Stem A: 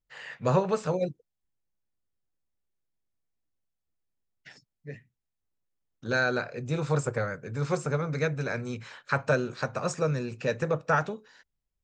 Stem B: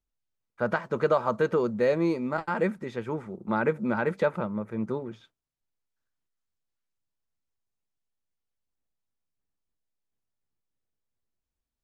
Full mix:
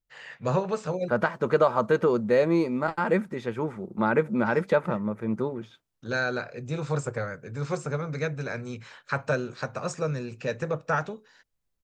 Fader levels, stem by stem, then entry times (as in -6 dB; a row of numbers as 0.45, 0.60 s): -1.5, +2.5 dB; 0.00, 0.50 s